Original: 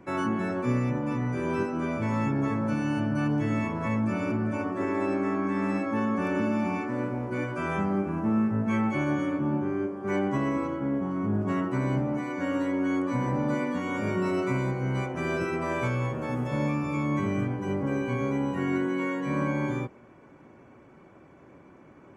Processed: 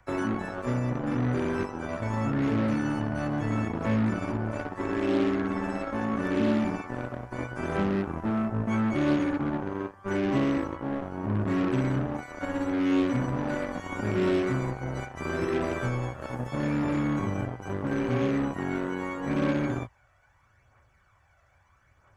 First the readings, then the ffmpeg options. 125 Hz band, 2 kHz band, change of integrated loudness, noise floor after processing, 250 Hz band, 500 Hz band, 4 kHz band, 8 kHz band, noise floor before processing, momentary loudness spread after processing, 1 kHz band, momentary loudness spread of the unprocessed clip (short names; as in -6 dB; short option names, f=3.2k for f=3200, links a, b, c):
-0.5 dB, -1.0 dB, -0.5 dB, -64 dBFS, -0.5 dB, 0.0 dB, +3.0 dB, n/a, -53 dBFS, 8 LU, -1.5 dB, 3 LU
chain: -filter_complex "[0:a]aphaser=in_gain=1:out_gain=1:delay=1.6:decay=0.44:speed=0.77:type=triangular,equalizer=f=160:t=o:w=0.67:g=-7,equalizer=f=1k:t=o:w=0.67:g=-7,equalizer=f=2.5k:t=o:w=0.67:g=-7,acrossover=split=110|810|3000[a][b][c][d];[b]acrusher=bits=4:mix=0:aa=0.5[e];[a][e][c][d]amix=inputs=4:normalize=0,acrossover=split=4000[f][g];[g]acompressor=threshold=-48dB:ratio=4:attack=1:release=60[h];[f][h]amix=inputs=2:normalize=0"